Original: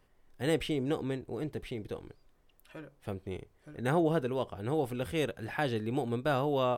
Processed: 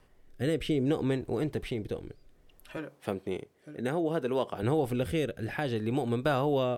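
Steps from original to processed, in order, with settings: 2.77–4.63 HPF 180 Hz 12 dB/oct; compressor 3:1, threshold -33 dBFS, peak gain reduction 8 dB; rotary speaker horn 0.6 Hz; gain +8.5 dB

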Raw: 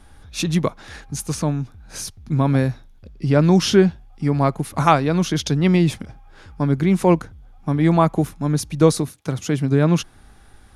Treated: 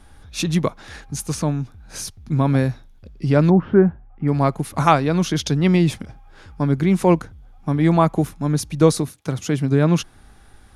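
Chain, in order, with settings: 3.49–4.27 LPF 1200 Hz -> 2200 Hz 24 dB/oct

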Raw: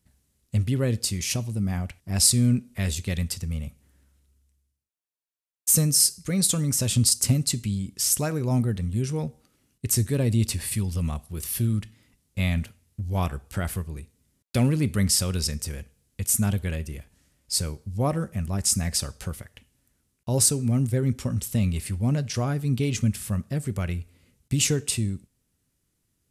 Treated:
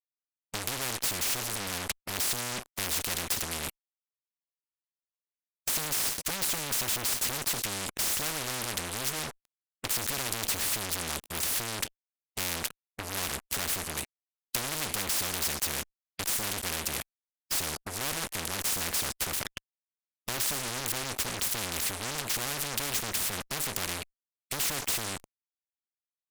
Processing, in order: fuzz box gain 35 dB, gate -43 dBFS; expander -25 dBFS; spectral compressor 4:1; gain +1.5 dB

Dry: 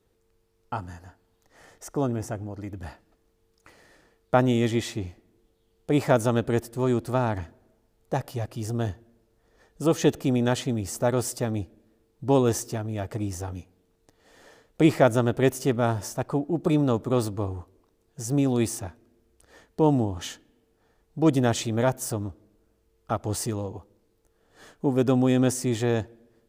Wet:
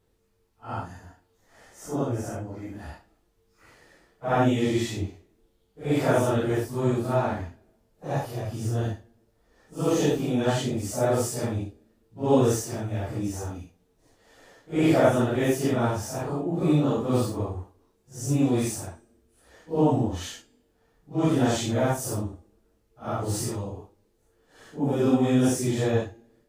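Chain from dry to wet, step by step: phase scrambler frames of 0.2 s; de-hum 405.5 Hz, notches 23

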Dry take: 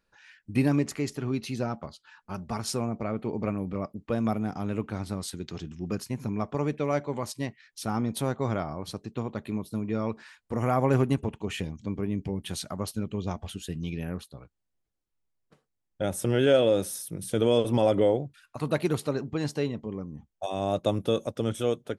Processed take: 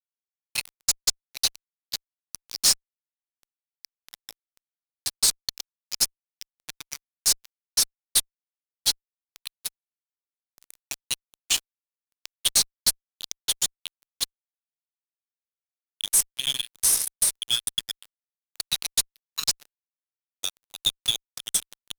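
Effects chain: inverse Chebyshev high-pass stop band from 1100 Hz, stop band 60 dB; transient shaper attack +11 dB, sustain -6 dB; fuzz box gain 35 dB, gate -39 dBFS; gain -1.5 dB

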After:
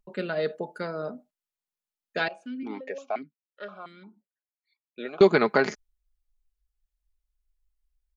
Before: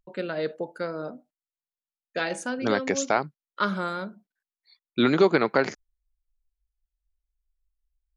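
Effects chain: comb 4.8 ms, depth 43%; 2.28–5.21 vowel sequencer 5.7 Hz

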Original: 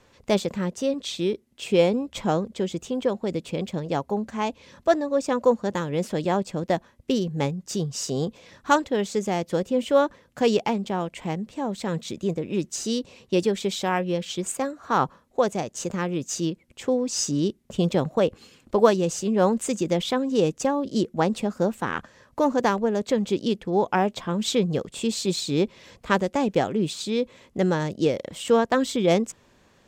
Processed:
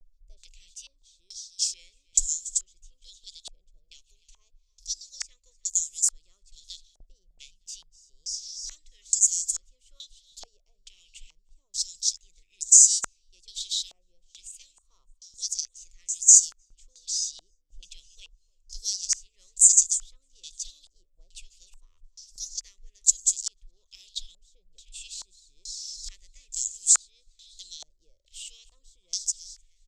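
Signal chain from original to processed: in parallel at -0.5 dB: compressor, threshold -33 dBFS, peak gain reduction 20.5 dB; on the sum: inverse Chebyshev band-stop 110–1700 Hz, stop band 70 dB; gate with hold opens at -59 dBFS; on a send: feedback echo 0.304 s, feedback 56%, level -19 dB; on the sum: maximiser +25 dB; stepped low-pass 2.3 Hz 700–7300 Hz; gain -11.5 dB

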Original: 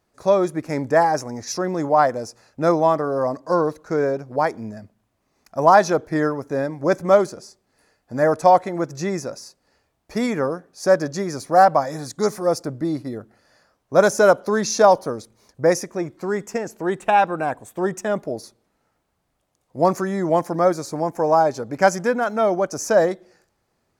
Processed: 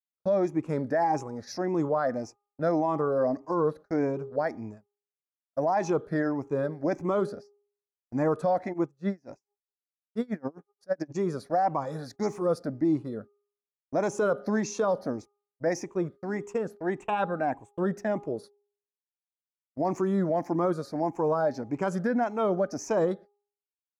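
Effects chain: moving spectral ripple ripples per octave 0.69, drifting +1.7 Hz, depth 10 dB; gate -35 dBFS, range -50 dB; dynamic EQ 230 Hz, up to +5 dB, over -31 dBFS, Q 0.95; limiter -10 dBFS, peak gain reduction 11 dB; LPF 2700 Hz 6 dB/oct; de-hum 408.3 Hz, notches 3; 8.72–11.14 dB-linear tremolo 3.4 Hz -> 11 Hz, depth 33 dB; gain -7.5 dB

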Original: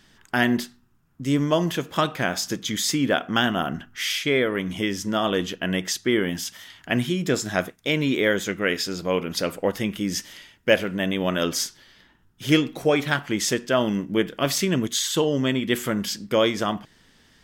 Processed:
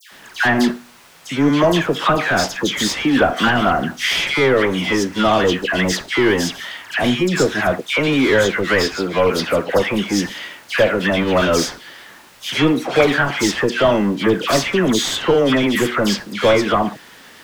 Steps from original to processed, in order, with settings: added noise white -56 dBFS; overdrive pedal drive 27 dB, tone 1700 Hz, clips at -2 dBFS; dispersion lows, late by 0.12 s, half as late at 1700 Hz; gain -2 dB

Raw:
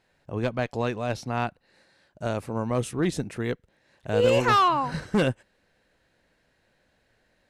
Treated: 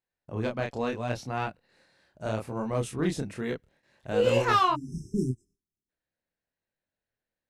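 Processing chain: gate with hold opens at -55 dBFS; chorus 0.73 Hz, depth 8 ms; spectral delete 4.75–5.89, 410–5100 Hz

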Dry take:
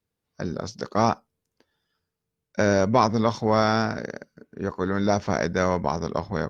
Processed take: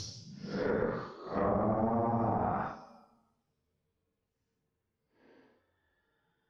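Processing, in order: low-pass opened by the level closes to 2000 Hz, open at -19.5 dBFS; Paulstretch 5.9×, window 0.10 s, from 0.7; compressor 8:1, threshold -25 dBFS, peak gain reduction 10.5 dB; tube stage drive 21 dB, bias 0.7; treble ducked by the level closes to 770 Hz, closed at -28 dBFS; gain +3.5 dB

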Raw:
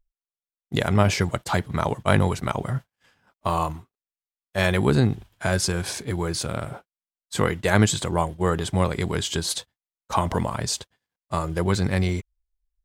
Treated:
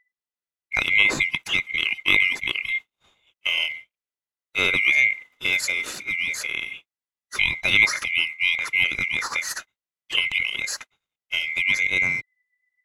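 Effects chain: band-swap scrambler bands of 2000 Hz; high shelf 6000 Hz -8 dB; gain +1 dB

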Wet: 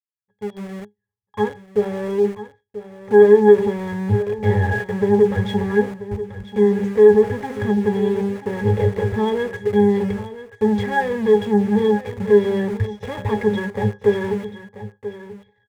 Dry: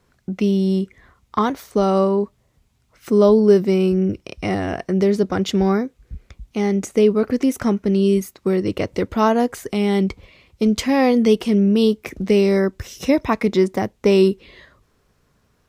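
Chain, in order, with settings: opening faded in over 4.05 s; de-hum 66.13 Hz, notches 12; sample leveller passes 5; octave resonator G#, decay 0.17 s; in parallel at -6.5 dB: sample gate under -26.5 dBFS; on the sum: ten-band EQ 125 Hz +11 dB, 250 Hz -10 dB, 500 Hz +10 dB, 1000 Hz +3 dB, 2000 Hz +10 dB, 8000 Hz +5 dB; on a send: echo 0.986 s -13.5 dB; on the sum: gain -7.5 dB

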